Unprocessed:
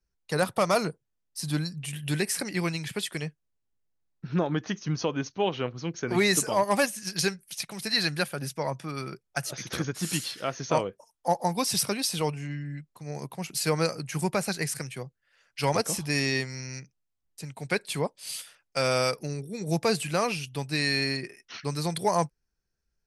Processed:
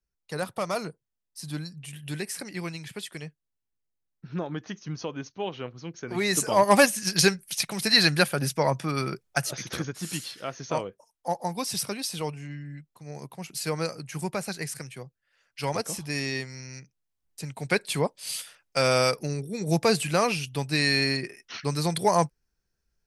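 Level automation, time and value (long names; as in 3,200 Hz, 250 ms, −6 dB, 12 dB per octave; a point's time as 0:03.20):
0:06.14 −5.5 dB
0:06.70 +6.5 dB
0:09.23 +6.5 dB
0:09.98 −3.5 dB
0:16.75 −3.5 dB
0:17.42 +3 dB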